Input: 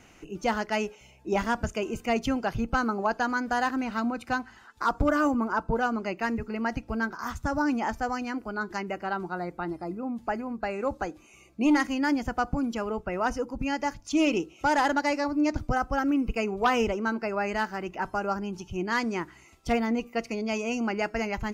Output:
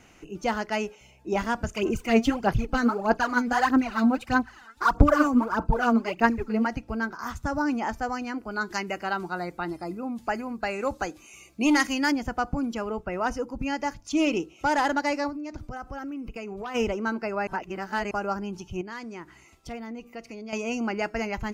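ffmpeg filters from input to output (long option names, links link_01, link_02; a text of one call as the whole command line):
ffmpeg -i in.wav -filter_complex "[0:a]asplit=3[link_01][link_02][link_03];[link_01]afade=type=out:start_time=1.73:duration=0.02[link_04];[link_02]aphaser=in_gain=1:out_gain=1:delay=4.5:decay=0.7:speed=1.6:type=sinusoidal,afade=type=in:start_time=1.73:duration=0.02,afade=type=out:start_time=6.66:duration=0.02[link_05];[link_03]afade=type=in:start_time=6.66:duration=0.02[link_06];[link_04][link_05][link_06]amix=inputs=3:normalize=0,asettb=1/sr,asplit=3[link_07][link_08][link_09];[link_07]atrim=end=8.514[link_10];[link_08]atrim=start=8.51:end=12.12,asetpts=PTS-STARTPTS,afade=type=in:duration=0.004:curve=qsin,afade=type=out:start_time=3.606:duration=0.004:curve=qsin,highshelf=frequency=2100:gain=10[link_11];[link_09]atrim=start=12.116[link_12];[link_10][link_11]acrossfade=duration=0.004:curve1=hsin:curve2=qsin[link_13];[link_13][link_12]acrossfade=duration=0.004:curve1=qsin:curve2=hsin,asplit=3[link_14][link_15][link_16];[link_14]afade=type=out:start_time=15.29:duration=0.02[link_17];[link_15]acompressor=threshold=-32dB:ratio=12:attack=3.2:release=140:knee=1:detection=peak,afade=type=in:start_time=15.29:duration=0.02,afade=type=out:start_time=16.74:duration=0.02[link_18];[link_16]afade=type=in:start_time=16.74:duration=0.02[link_19];[link_17][link_18][link_19]amix=inputs=3:normalize=0,asettb=1/sr,asplit=3[link_20][link_21][link_22];[link_20]atrim=end=18.814[link_23];[link_21]atrim=start=18.81:end=20.53,asetpts=PTS-STARTPTS,afade=type=in:duration=0.004:curve=qsin,afade=type=out:start_time=1.716:duration=0.004:curve=qsin,acompressor=threshold=-43dB:ratio=2:attack=3.2:release=140:knee=1:detection=peak[link_24];[link_22]atrim=start=20.526[link_25];[link_23][link_24]acrossfade=duration=0.004:curve1=hsin:curve2=qsin[link_26];[link_26][link_25]acrossfade=duration=0.004:curve1=qsin:curve2=hsin,asplit=3[link_27][link_28][link_29];[link_27]atrim=end=17.472[link_30];[link_28]atrim=start=17.468:end=18.112,asetpts=PTS-STARTPTS,areverse[link_31];[link_29]atrim=start=18.108[link_32];[link_30][link_31]acrossfade=duration=0.004:curve1=hsin:curve2=hsin[link_33];[link_33][link_32]acrossfade=duration=0.004:curve1=hsin:curve2=hsin" out.wav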